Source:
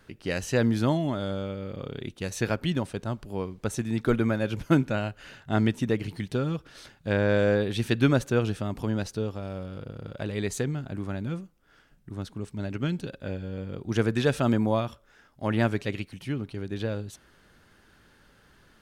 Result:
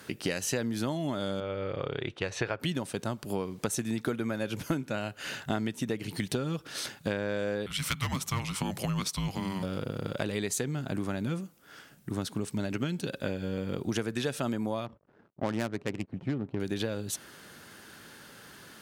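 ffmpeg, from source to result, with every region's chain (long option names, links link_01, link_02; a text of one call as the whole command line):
ffmpeg -i in.wav -filter_complex "[0:a]asettb=1/sr,asplit=3[link_01][link_02][link_03];[link_01]atrim=end=1.404[link_04];[link_02]atrim=start=1.4:end=2.6,asetpts=PTS-STARTPTS,afade=type=in:duration=0.004:curve=qsin,afade=type=out:start_time=1.196:duration=0.004:curve=qsin,lowpass=2600,equalizer=frequency=220:width_type=o:width=0.85:gain=-13.5[link_05];[link_03]atrim=start=2.596[link_06];[link_04][link_05]acrossfade=duration=0.004:curve1=hsin:curve2=qsin[link_07];[link_07][link_06]acrossfade=duration=0.004:curve1=qsin:curve2=hsin,asettb=1/sr,asplit=3[link_08][link_09][link_10];[link_08]atrim=end=7.664[link_11];[link_09]atrim=start=7.66:end=9.63,asetpts=PTS-STARTPTS,afade=type=in:duration=0.004:curve=qsin,afade=type=out:start_time=1.966:duration=0.004:curve=qsin,highpass=frequency=220:width=0.5412,highpass=frequency=220:width=1.3066,asoftclip=type=hard:threshold=-17dB,afreqshift=-380[link_12];[link_10]atrim=start=9.626[link_13];[link_11][link_12]acrossfade=duration=0.004:curve1=hsin:curve2=qsin[link_14];[link_14][link_13]acrossfade=duration=0.004:curve1=qsin:curve2=hsin,asettb=1/sr,asplit=3[link_15][link_16][link_17];[link_15]atrim=end=14.864[link_18];[link_16]atrim=start=14.86:end=16.6,asetpts=PTS-STARTPTS,afade=type=in:duration=0.004:curve=qsin,afade=type=out:start_time=1.736:duration=0.004:curve=qsin,acrusher=bits=8:mix=0:aa=0.5,adynamicsmooth=sensitivity=2.5:basefreq=520[link_19];[link_17]atrim=start=16.596[link_20];[link_18][link_19]acrossfade=duration=0.004:curve1=hsin:curve2=qsin[link_21];[link_21][link_20]acrossfade=duration=0.004:curve1=qsin:curve2=hsin,highpass=130,aemphasis=mode=production:type=cd,acompressor=threshold=-36dB:ratio=12,volume=8.5dB" out.wav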